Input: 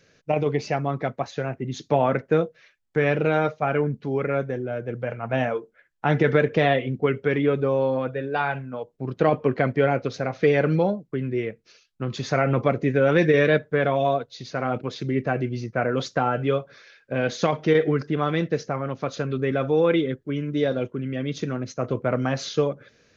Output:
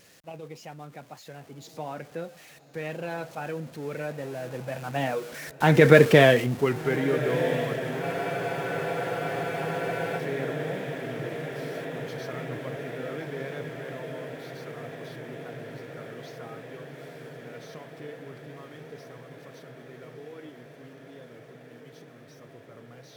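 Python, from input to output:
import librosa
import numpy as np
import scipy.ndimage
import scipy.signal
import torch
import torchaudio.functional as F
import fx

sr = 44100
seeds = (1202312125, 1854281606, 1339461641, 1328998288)

p1 = x + 0.5 * 10.0 ** (-33.0 / 20.0) * np.sign(x)
p2 = fx.doppler_pass(p1, sr, speed_mps=24, closest_m=6.5, pass_at_s=6.03)
p3 = scipy.signal.sosfilt(scipy.signal.butter(2, 60.0, 'highpass', fs=sr, output='sos'), p2)
p4 = fx.high_shelf(p3, sr, hz=4300.0, db=5.5)
p5 = fx.echo_diffused(p4, sr, ms=1334, feedback_pct=77, wet_db=-13)
p6 = fx.wow_flutter(p5, sr, seeds[0], rate_hz=2.1, depth_cents=27.0)
p7 = fx.rider(p6, sr, range_db=4, speed_s=2.0)
p8 = p6 + (p7 * librosa.db_to_amplitude(1.0))
p9 = fx.spec_freeze(p8, sr, seeds[1], at_s=8.04, hold_s=2.14)
y = p9 * librosa.db_to_amplitude(-1.0)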